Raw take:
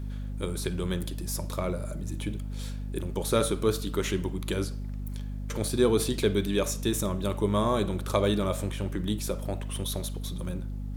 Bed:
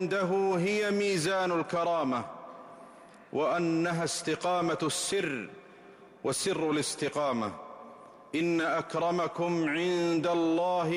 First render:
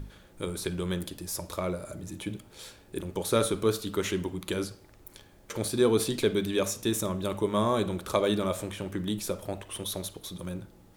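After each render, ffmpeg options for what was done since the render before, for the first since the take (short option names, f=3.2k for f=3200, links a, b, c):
-af "bandreject=f=50:t=h:w=6,bandreject=f=100:t=h:w=6,bandreject=f=150:t=h:w=6,bandreject=f=200:t=h:w=6,bandreject=f=250:t=h:w=6"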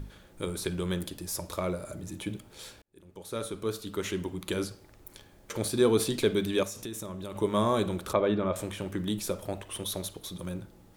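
-filter_complex "[0:a]asettb=1/sr,asplit=3[a][b][c];[a]atrim=end=6.634[d];[b]atrim=start=6.63:end=7.36,asetpts=PTS-STARTPTS,afade=t=in:d=0.004:c=qsin,afade=t=out:st=0.726:d=0.004:c=qsin,acompressor=threshold=-36dB:ratio=4:attack=3.2:release=140:knee=1:detection=peak[e];[c]atrim=start=7.356[f];[d][e]acrossfade=d=0.004:c1=hsin:c2=qsin[g];[g][f]acrossfade=d=0.004:c1=qsin:c2=hsin,asettb=1/sr,asplit=3[h][i][j];[h]atrim=end=8.134[k];[i]atrim=start=8.13:end=8.56,asetpts=PTS-STARTPTS,afade=t=in:d=0.004:c=qsin,afade=t=out:st=0.426:d=0.004:c=qsin,lowpass=2.2k[l];[j]atrim=start=8.556[m];[k][l]acrossfade=d=0.004:c1=hsin:c2=qsin[n];[n][m]acrossfade=d=0.004:c1=qsin:c2=hsin,asplit=2[o][p];[o]atrim=end=2.82,asetpts=PTS-STARTPTS,afade=t=out:st=2.816:d=0.004:c=hsin[q];[p]atrim=start=2.82,asetpts=PTS-STARTPTS,afade=t=in:d=1.78[r];[q][r]concat=n=2:v=0:a=1"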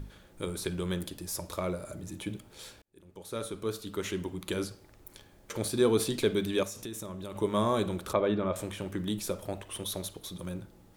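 -af "volume=-1.5dB"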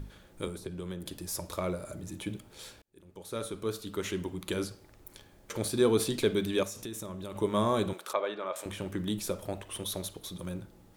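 -filter_complex "[0:a]asettb=1/sr,asplit=3[a][b][c];[a]atrim=end=0.474[d];[b]atrim=start=0.47:end=1.06,asetpts=PTS-STARTPTS,afade=t=in:d=0.004:c=qsin,afade=t=out:st=0.586:d=0.004:c=qsin,acrossover=split=160|850[e][f][g];[e]acompressor=threshold=-45dB:ratio=4[h];[f]acompressor=threshold=-38dB:ratio=4[i];[g]acompressor=threshold=-51dB:ratio=4[j];[h][i][j]amix=inputs=3:normalize=0[k];[c]atrim=start=1.056[l];[d][k]acrossfade=d=0.004:c1=hsin:c2=qsin[m];[m][l]acrossfade=d=0.004:c1=qsin:c2=hsin,asettb=1/sr,asplit=3[n][o][p];[n]atrim=end=7.934[q];[o]atrim=start=7.93:end=8.66,asetpts=PTS-STARTPTS,afade=t=in:d=0.004:c=qsin,afade=t=out:st=0.726:d=0.004:c=qsin,highpass=610[r];[p]atrim=start=8.656[s];[q][r]acrossfade=d=0.004:c1=hsin:c2=qsin[t];[t][s]acrossfade=d=0.004:c1=qsin:c2=hsin"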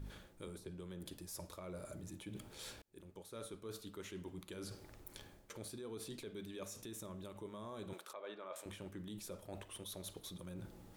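-af "alimiter=level_in=0.5dB:limit=-24dB:level=0:latency=1:release=179,volume=-0.5dB,areverse,acompressor=threshold=-46dB:ratio=6,areverse"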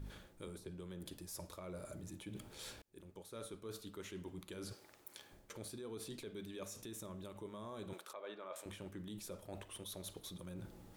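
-filter_complex "[0:a]asettb=1/sr,asplit=3[a][b][c];[a]atrim=end=4.734[d];[b]atrim=start=4.73:end=5.31,asetpts=PTS-STARTPTS,afade=t=in:d=0.004:c=qsin,afade=t=out:st=0.576:d=0.004:c=qsin,highpass=f=650:p=1[e];[c]atrim=start=5.306[f];[d][e]acrossfade=d=0.004:c1=hsin:c2=qsin[g];[g][f]acrossfade=d=0.004:c1=qsin:c2=hsin"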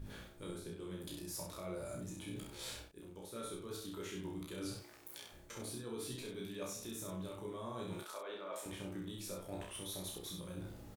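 -filter_complex "[0:a]asplit=2[a][b];[b]adelay=31,volume=-3dB[c];[a][c]amix=inputs=2:normalize=0,aecho=1:1:17|65:0.596|0.631"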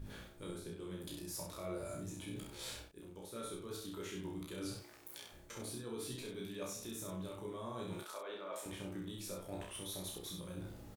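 -filter_complex "[0:a]asettb=1/sr,asplit=3[a][b][c];[a]atrim=end=1.584[d];[b]atrim=start=1.58:end=2.25,asetpts=PTS-STARTPTS,afade=t=in:d=0.004:c=qsin,afade=t=out:st=0.666:d=0.004:c=qsin,asplit=2[e][f];[f]adelay=20,volume=-6dB[g];[e][g]amix=inputs=2:normalize=0,atrim=end_sample=29547[h];[c]atrim=start=2.246[i];[d][h]acrossfade=d=0.004:c1=hsin:c2=qsin[j];[j][i]acrossfade=d=0.004:c1=qsin:c2=hsin"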